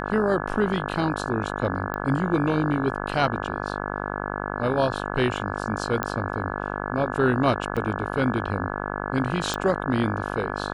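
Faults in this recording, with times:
buzz 50 Hz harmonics 34 -30 dBFS
1.94 pop -16 dBFS
6.03 pop -11 dBFS
7.76–7.77 gap 6.7 ms
9.54 pop

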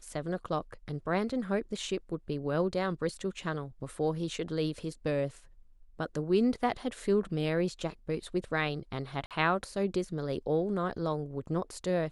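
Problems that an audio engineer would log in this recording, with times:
9.26–9.31 gap 47 ms

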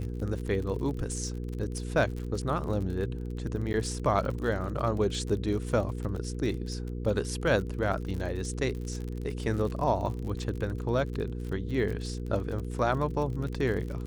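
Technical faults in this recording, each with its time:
crackle 45/s -35 dBFS
hum 60 Hz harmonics 8 -35 dBFS
3.73–3.74 gap 9.3 ms

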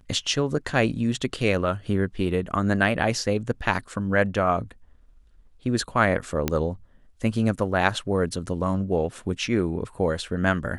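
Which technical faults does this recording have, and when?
6.48 pop -8 dBFS

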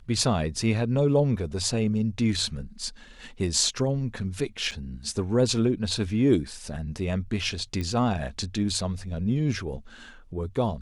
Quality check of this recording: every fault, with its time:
4.71–4.72 gap 6.4 ms
7.81 pop -19 dBFS

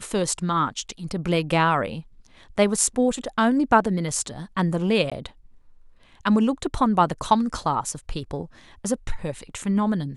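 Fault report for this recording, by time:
5.1–5.12 gap 16 ms

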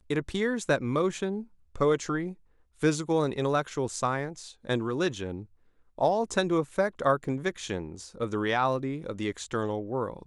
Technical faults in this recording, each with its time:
7.24 gap 2.1 ms

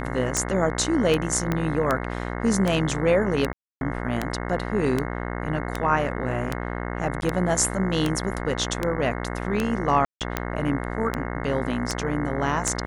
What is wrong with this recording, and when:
buzz 60 Hz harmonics 36 -30 dBFS
tick 78 rpm
1.52 pop -11 dBFS
3.53–3.81 gap 0.281 s
7.21–7.22 gap 11 ms
10.05–10.21 gap 0.158 s

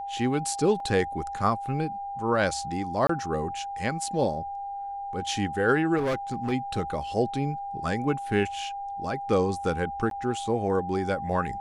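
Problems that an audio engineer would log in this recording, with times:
tone 800 Hz -32 dBFS
0.8 gap 2.6 ms
3.07–3.09 gap 24 ms
5.97–6.53 clipped -23.5 dBFS
10.1–10.11 gap 12 ms

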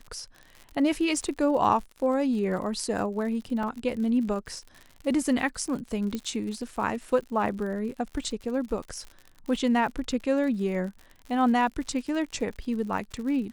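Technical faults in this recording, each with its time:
crackle 71/s -36 dBFS
3.63 gap 2.4 ms
6.15 pop -18 dBFS

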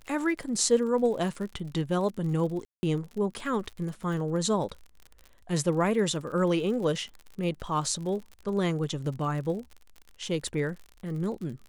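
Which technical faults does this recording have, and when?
crackle 54/s -37 dBFS
2.65–2.83 gap 0.18 s

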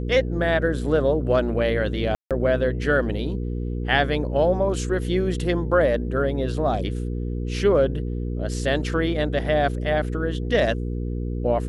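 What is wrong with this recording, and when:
hum 60 Hz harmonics 8 -27 dBFS
2.15–2.31 gap 0.157 s

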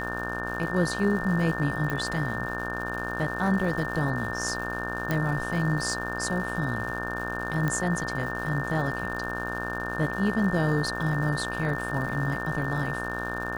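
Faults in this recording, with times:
buzz 60 Hz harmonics 28 -34 dBFS
crackle 260/s -36 dBFS
tone 1800 Hz -33 dBFS
1.9 pop
5.11 pop -13 dBFS
7.68 pop -15 dBFS

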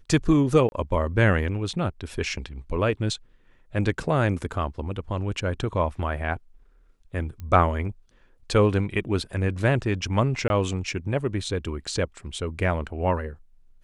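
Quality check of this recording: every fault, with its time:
0.69–0.72 gap 31 ms
7.4 pop -25 dBFS
10.48–10.5 gap 21 ms

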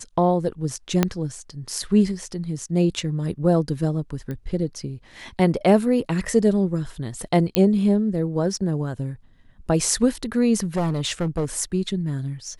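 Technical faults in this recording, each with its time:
1.03 pop -4 dBFS
4.31 pop -20 dBFS
7.55 pop -3 dBFS
10.56–11.46 clipped -18.5 dBFS

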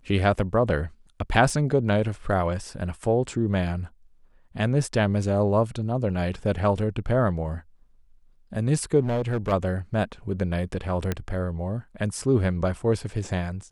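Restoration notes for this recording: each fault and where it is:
1.5 gap 2.4 ms
9–9.53 clipped -21 dBFS
11.12 pop -12 dBFS

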